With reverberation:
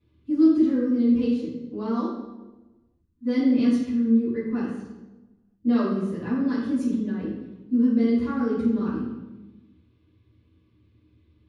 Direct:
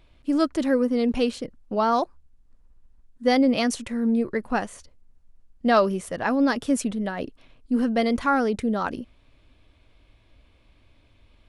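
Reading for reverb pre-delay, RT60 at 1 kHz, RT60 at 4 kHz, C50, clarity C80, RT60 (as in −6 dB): 3 ms, 0.95 s, 0.75 s, 0.5 dB, 4.5 dB, 1.2 s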